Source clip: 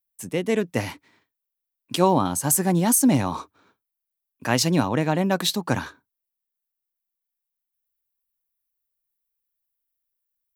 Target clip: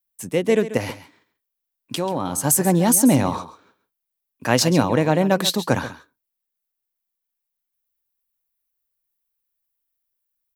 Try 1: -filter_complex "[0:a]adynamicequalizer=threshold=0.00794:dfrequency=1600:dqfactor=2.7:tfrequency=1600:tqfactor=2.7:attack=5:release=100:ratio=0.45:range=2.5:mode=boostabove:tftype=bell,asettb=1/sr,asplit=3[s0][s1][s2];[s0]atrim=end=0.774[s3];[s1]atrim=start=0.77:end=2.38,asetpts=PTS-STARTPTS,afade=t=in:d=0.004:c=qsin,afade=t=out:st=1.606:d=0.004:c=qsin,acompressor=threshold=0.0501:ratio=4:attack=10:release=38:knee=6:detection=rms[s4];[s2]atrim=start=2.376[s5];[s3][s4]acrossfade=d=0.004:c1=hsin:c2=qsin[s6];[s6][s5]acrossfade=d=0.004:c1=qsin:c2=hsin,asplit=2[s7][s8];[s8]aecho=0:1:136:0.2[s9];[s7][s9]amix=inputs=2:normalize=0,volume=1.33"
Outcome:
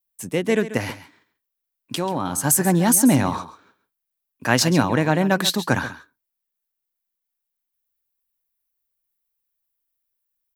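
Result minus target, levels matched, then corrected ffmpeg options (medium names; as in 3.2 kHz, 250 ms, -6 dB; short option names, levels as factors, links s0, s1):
2 kHz band +4.0 dB
-filter_complex "[0:a]adynamicequalizer=threshold=0.00794:dfrequency=510:dqfactor=2.7:tfrequency=510:tqfactor=2.7:attack=5:release=100:ratio=0.45:range=2.5:mode=boostabove:tftype=bell,asettb=1/sr,asplit=3[s0][s1][s2];[s0]atrim=end=0.774[s3];[s1]atrim=start=0.77:end=2.38,asetpts=PTS-STARTPTS,afade=t=in:d=0.004:c=qsin,afade=t=out:st=1.606:d=0.004:c=qsin,acompressor=threshold=0.0501:ratio=4:attack=10:release=38:knee=6:detection=rms[s4];[s2]atrim=start=2.376[s5];[s3][s4]acrossfade=d=0.004:c1=hsin:c2=qsin[s6];[s6][s5]acrossfade=d=0.004:c1=qsin:c2=hsin,asplit=2[s7][s8];[s8]aecho=0:1:136:0.2[s9];[s7][s9]amix=inputs=2:normalize=0,volume=1.33"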